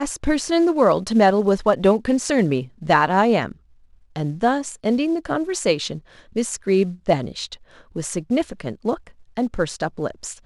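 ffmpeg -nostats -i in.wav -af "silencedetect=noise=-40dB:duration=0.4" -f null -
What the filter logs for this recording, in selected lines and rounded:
silence_start: 3.52
silence_end: 4.16 | silence_duration: 0.64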